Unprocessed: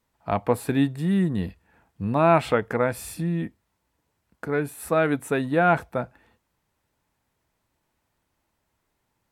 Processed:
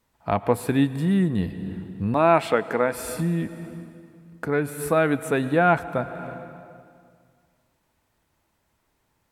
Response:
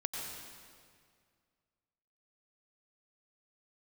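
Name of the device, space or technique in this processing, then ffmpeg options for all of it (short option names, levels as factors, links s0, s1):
ducked reverb: -filter_complex "[0:a]asettb=1/sr,asplit=3[s0][s1][s2];[s0]atrim=end=2.144[s3];[s1]atrim=start=2.14:end=2.95,asetpts=PTS-STARTPTS,afade=t=in:d=0.004:c=qsin,afade=t=out:st=0.806:d=0.004:c=qsin,highpass=210[s4];[s2]atrim=start=2.946[s5];[s3][s4]acrossfade=d=0.004:c1=hsin:c2=qsin[s6];[s6][s5]acrossfade=d=0.004:c1=qsin:c2=hsin,asplit=3[s7][s8][s9];[1:a]atrim=start_sample=2205[s10];[s8][s10]afir=irnorm=-1:irlink=0[s11];[s9]apad=whole_len=410978[s12];[s11][s12]sidechaincompress=threshold=0.0282:ratio=6:attack=38:release=390,volume=0.596[s13];[s7][s13]amix=inputs=2:normalize=0"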